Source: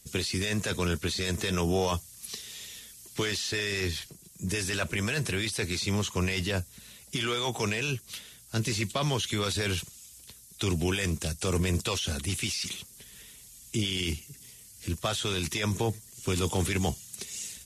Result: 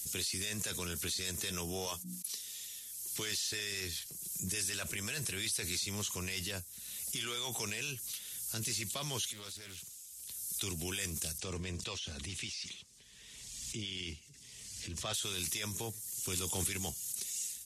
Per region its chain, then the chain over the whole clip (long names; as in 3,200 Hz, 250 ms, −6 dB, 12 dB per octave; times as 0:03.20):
0:01.86–0:02.40: noise gate −43 dBFS, range −37 dB + high-pass filter 170 Hz 6 dB per octave + mains-hum notches 60/120/180/240/300 Hz
0:09.32–0:10.29: downward compressor 2 to 1, threshold −46 dBFS + transient designer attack −2 dB, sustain +4 dB + highs frequency-modulated by the lows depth 0.4 ms
0:11.38–0:15.14: high-frequency loss of the air 120 metres + notch filter 1,400 Hz, Q 14
whole clip: first-order pre-emphasis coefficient 0.8; background raised ahead of every attack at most 29 dB per second